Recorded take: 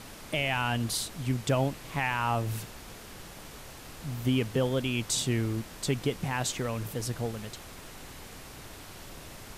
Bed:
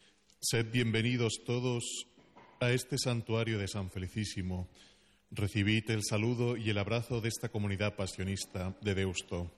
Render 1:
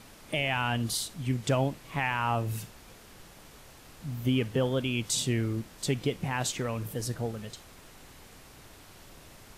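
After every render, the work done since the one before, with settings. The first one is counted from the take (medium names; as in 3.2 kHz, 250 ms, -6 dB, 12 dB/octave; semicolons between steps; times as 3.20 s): noise print and reduce 6 dB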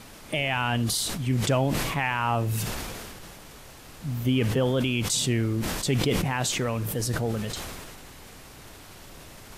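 in parallel at -2 dB: peak limiter -25.5 dBFS, peak gain reduction 9.5 dB; on the sum: decay stretcher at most 26 dB/s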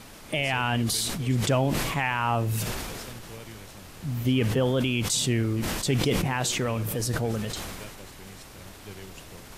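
add bed -11.5 dB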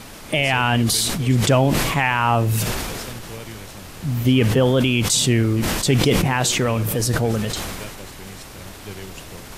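trim +7.5 dB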